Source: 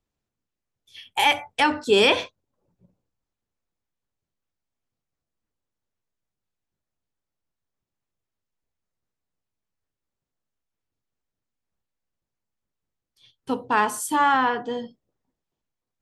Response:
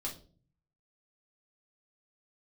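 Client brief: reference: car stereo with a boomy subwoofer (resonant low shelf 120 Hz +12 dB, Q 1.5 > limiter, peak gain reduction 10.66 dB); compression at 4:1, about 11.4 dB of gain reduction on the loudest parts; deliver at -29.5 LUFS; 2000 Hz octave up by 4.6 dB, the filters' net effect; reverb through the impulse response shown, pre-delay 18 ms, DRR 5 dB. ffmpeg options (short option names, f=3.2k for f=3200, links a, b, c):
-filter_complex "[0:a]equalizer=f=2k:t=o:g=6,acompressor=threshold=-26dB:ratio=4,asplit=2[a][b];[1:a]atrim=start_sample=2205,adelay=18[c];[b][c]afir=irnorm=-1:irlink=0,volume=-5dB[d];[a][d]amix=inputs=2:normalize=0,lowshelf=f=120:t=q:w=1.5:g=12,volume=3.5dB,alimiter=limit=-19.5dB:level=0:latency=1"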